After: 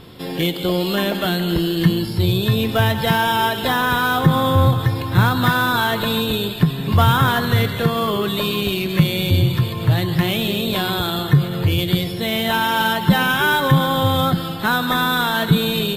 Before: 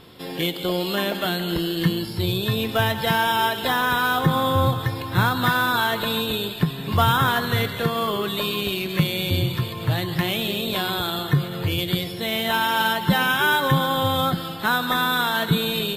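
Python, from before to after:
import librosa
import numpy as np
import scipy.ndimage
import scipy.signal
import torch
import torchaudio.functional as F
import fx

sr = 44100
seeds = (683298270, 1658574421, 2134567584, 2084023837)

p1 = fx.low_shelf(x, sr, hz=260.0, db=6.5)
p2 = 10.0 ** (-19.5 / 20.0) * np.tanh(p1 / 10.0 ** (-19.5 / 20.0))
y = p1 + (p2 * 10.0 ** (-7.0 / 20.0))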